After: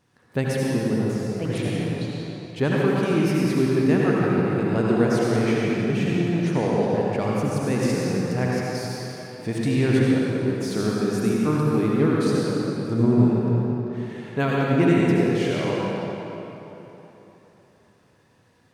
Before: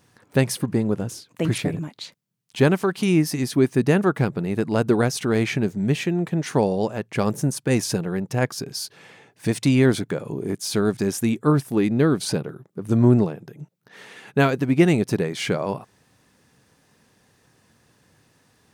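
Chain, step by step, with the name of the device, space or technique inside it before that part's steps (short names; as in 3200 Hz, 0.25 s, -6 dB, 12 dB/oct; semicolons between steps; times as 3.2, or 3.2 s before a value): swimming-pool hall (reverb RT60 3.6 s, pre-delay 66 ms, DRR -5 dB; high shelf 5900 Hz -8 dB); gain -6 dB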